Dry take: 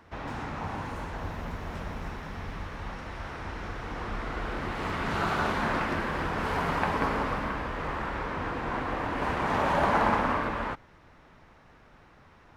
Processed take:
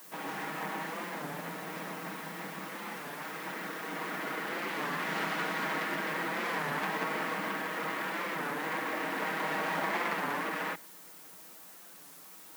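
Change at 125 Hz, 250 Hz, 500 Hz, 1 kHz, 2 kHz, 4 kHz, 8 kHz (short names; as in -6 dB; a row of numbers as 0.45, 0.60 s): -11.5, -6.0, -5.0, -5.5, -0.5, 0.0, +5.0 dB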